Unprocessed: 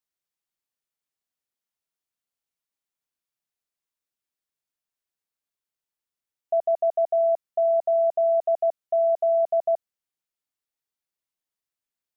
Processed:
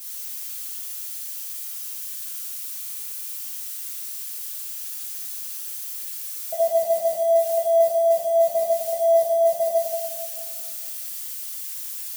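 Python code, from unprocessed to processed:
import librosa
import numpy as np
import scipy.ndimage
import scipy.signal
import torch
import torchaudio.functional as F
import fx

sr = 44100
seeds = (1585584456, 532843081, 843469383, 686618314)

y = x + 0.5 * 10.0 ** (-30.5 / 20.0) * np.diff(np.sign(x), prepend=np.sign(x[:1]))
y = fx.low_shelf(y, sr, hz=390.0, db=4.5)
y = fx.rev_fdn(y, sr, rt60_s=1.8, lf_ratio=1.35, hf_ratio=0.8, size_ms=34.0, drr_db=-9.0)
y = F.gain(torch.from_numpy(y), -6.0).numpy()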